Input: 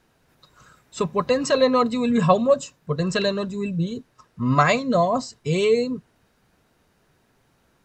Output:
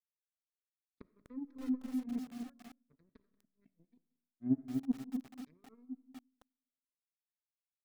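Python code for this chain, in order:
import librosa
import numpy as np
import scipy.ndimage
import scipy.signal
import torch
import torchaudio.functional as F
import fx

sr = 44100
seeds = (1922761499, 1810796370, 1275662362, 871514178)

p1 = fx.highpass(x, sr, hz=50.0, slope=6)
p2 = fx.env_lowpass_down(p1, sr, base_hz=650.0, full_db=-18.0)
p3 = fx.dereverb_blind(p2, sr, rt60_s=0.65)
p4 = fx.vowel_filter(p3, sr, vowel='i')
p5 = fx.high_shelf(p4, sr, hz=2700.0, db=5.0)
p6 = fx.power_curve(p5, sr, exponent=3.0)
p7 = fx.air_absorb(p6, sr, metres=83.0)
p8 = fx.fixed_phaser(p7, sr, hz=2900.0, stages=6)
p9 = p8 + fx.echo_single(p8, sr, ms=183, db=-20.5, dry=0)
p10 = fx.rev_freeverb(p9, sr, rt60_s=0.98, hf_ratio=0.5, predelay_ms=10, drr_db=17.0)
p11 = fx.echo_crushed(p10, sr, ms=246, feedback_pct=35, bits=9, wet_db=-5.0)
y = F.gain(torch.from_numpy(p11), 3.5).numpy()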